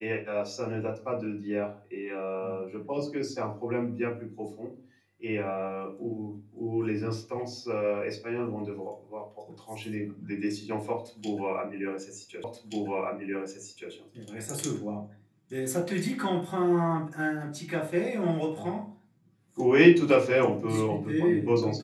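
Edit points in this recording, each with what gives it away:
12.44 repeat of the last 1.48 s

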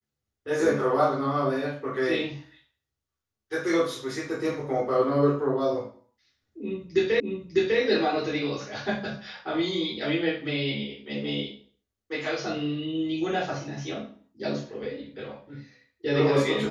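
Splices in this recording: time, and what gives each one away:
7.2 repeat of the last 0.6 s

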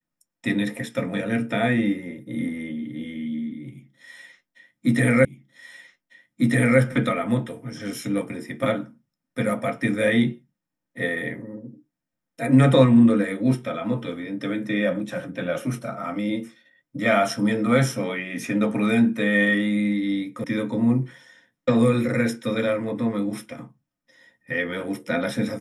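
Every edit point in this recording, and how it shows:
5.25 repeat of the last 1.55 s
20.44 sound cut off

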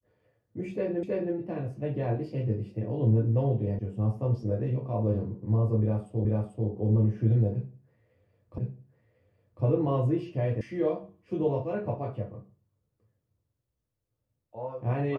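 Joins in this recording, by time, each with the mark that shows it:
1.03 repeat of the last 0.32 s
3.79 sound cut off
6.25 repeat of the last 0.44 s
8.58 repeat of the last 1.05 s
10.61 sound cut off

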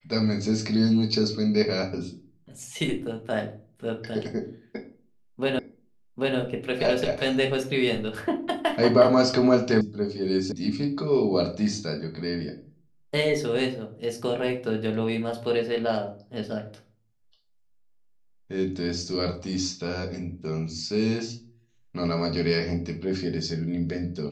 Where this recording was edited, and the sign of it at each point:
5.59 repeat of the last 0.79 s
9.81 sound cut off
10.52 sound cut off

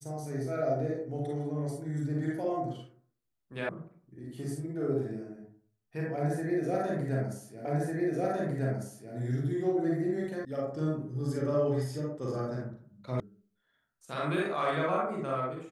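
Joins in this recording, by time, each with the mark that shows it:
3.69 sound cut off
7.65 repeat of the last 1.5 s
10.45 sound cut off
13.2 sound cut off

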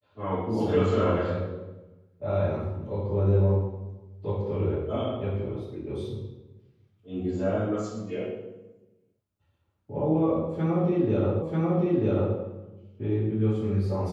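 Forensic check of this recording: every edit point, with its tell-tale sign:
11.42 repeat of the last 0.94 s

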